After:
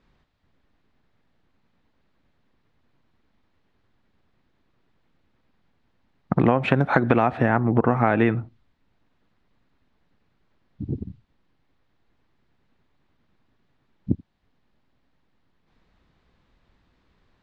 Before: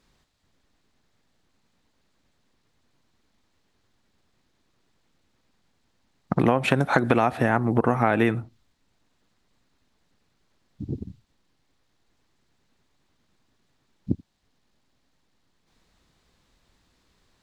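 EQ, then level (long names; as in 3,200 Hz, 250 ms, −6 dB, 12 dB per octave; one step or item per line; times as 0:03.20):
low-pass filter 6,100 Hz 12 dB per octave
bass and treble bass +2 dB, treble −13 dB
+1.0 dB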